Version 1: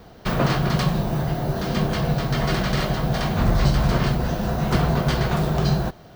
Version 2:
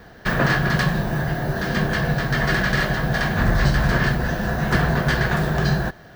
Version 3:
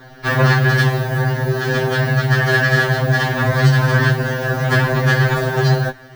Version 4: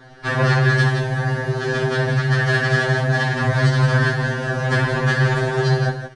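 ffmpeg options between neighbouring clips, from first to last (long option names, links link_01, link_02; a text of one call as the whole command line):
ffmpeg -i in.wav -af "equalizer=frequency=1700:width=4.7:gain=15" out.wav
ffmpeg -i in.wav -af "afftfilt=real='re*2.45*eq(mod(b,6),0)':imag='im*2.45*eq(mod(b,6),0)':win_size=2048:overlap=0.75,volume=6.5dB" out.wav
ffmpeg -i in.wav -filter_complex "[0:a]asplit=2[link_01][link_02];[link_02]aecho=0:1:61.22|169.1:0.316|0.447[link_03];[link_01][link_03]amix=inputs=2:normalize=0,aresample=22050,aresample=44100,volume=-4dB" out.wav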